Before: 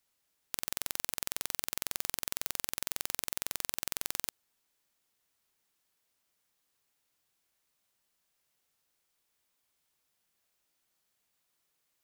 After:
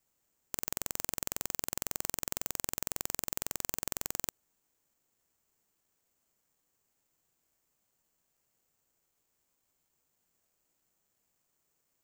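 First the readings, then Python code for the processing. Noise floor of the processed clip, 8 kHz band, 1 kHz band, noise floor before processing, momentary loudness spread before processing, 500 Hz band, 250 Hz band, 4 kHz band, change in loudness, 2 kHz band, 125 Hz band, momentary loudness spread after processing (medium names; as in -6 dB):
-80 dBFS, +1.0 dB, +0.5 dB, -79 dBFS, 2 LU, +3.5 dB, +5.0 dB, -4.5 dB, 0.0 dB, -3.0 dB, +5.5 dB, 2 LU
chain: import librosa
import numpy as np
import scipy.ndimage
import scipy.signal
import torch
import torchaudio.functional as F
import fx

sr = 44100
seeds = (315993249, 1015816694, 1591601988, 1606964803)

y = fx.tilt_shelf(x, sr, db=5.5, hz=1100.0)
y = (np.kron(scipy.signal.resample_poly(y, 1, 6), np.eye(6)[0]) * 6)[:len(y)]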